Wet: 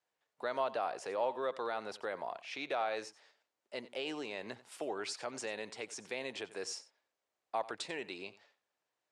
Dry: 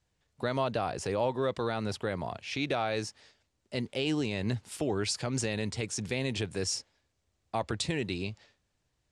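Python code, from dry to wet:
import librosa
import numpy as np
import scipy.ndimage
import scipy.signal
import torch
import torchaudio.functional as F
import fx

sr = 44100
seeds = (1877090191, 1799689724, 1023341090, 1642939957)

y = scipy.signal.sosfilt(scipy.signal.butter(2, 610.0, 'highpass', fs=sr, output='sos'), x)
y = fx.high_shelf(y, sr, hz=2200.0, db=-11.0)
y = y + 10.0 ** (-17.5 / 20.0) * np.pad(y, (int(90 * sr / 1000.0), 0))[:len(y)]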